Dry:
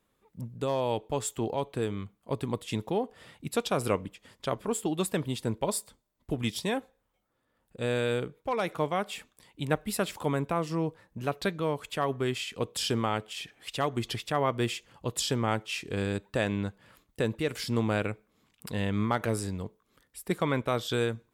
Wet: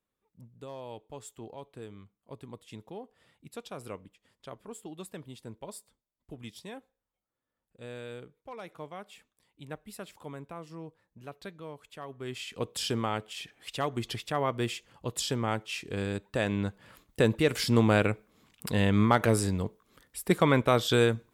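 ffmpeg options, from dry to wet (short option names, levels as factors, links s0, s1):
-af "volume=1.78,afade=t=in:st=12.16:d=0.41:silence=0.266073,afade=t=in:st=16.29:d=0.97:silence=0.446684"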